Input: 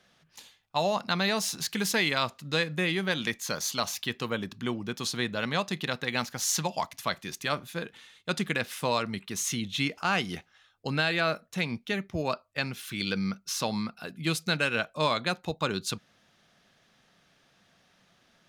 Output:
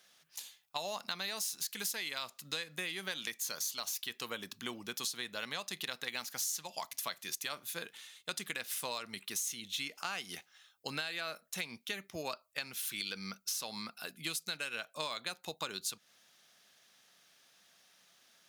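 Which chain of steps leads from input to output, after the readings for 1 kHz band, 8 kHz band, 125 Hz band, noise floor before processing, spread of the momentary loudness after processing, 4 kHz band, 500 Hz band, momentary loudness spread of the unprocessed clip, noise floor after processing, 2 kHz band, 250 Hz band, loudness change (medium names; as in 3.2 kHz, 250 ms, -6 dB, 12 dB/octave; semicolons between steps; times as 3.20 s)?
-12.0 dB, -4.0 dB, -20.0 dB, -66 dBFS, 7 LU, -6.5 dB, -14.0 dB, 7 LU, -71 dBFS, -10.0 dB, -17.0 dB, -9.0 dB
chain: RIAA curve recording; compression 6:1, threshold -30 dBFS, peak gain reduction 15.5 dB; trim -5 dB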